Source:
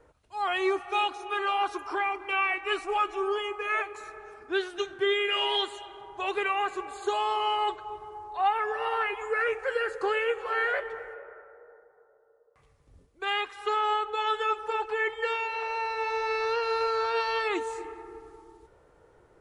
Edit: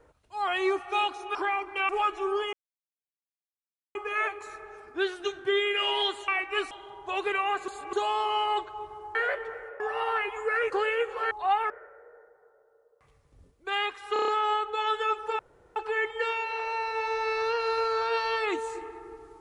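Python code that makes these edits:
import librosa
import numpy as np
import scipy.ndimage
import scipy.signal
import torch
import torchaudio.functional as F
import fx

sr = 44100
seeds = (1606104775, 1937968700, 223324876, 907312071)

y = fx.edit(x, sr, fx.cut(start_s=1.35, length_s=0.53),
    fx.move(start_s=2.42, length_s=0.43, to_s=5.82),
    fx.insert_silence(at_s=3.49, length_s=1.42),
    fx.reverse_span(start_s=6.79, length_s=0.25),
    fx.swap(start_s=8.26, length_s=0.39, other_s=10.6, other_length_s=0.65),
    fx.cut(start_s=9.55, length_s=0.44),
    fx.stutter(start_s=13.68, slice_s=0.03, count=6),
    fx.insert_room_tone(at_s=14.79, length_s=0.37), tone=tone)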